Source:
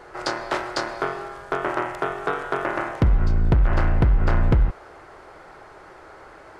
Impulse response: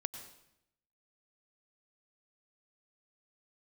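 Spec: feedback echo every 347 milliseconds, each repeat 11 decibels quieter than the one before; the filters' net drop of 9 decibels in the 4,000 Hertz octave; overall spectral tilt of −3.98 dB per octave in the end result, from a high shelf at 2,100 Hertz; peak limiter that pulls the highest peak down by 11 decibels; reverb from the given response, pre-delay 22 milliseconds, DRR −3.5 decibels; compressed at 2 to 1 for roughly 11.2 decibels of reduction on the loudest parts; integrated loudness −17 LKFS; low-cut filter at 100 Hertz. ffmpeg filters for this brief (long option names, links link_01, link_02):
-filter_complex "[0:a]highpass=100,highshelf=frequency=2100:gain=-5,equalizer=frequency=4000:width_type=o:gain=-6.5,acompressor=threshold=-37dB:ratio=2,alimiter=level_in=5dB:limit=-24dB:level=0:latency=1,volume=-5dB,aecho=1:1:347|694|1041:0.282|0.0789|0.0221,asplit=2[link_01][link_02];[1:a]atrim=start_sample=2205,adelay=22[link_03];[link_02][link_03]afir=irnorm=-1:irlink=0,volume=4dB[link_04];[link_01][link_04]amix=inputs=2:normalize=0,volume=17dB"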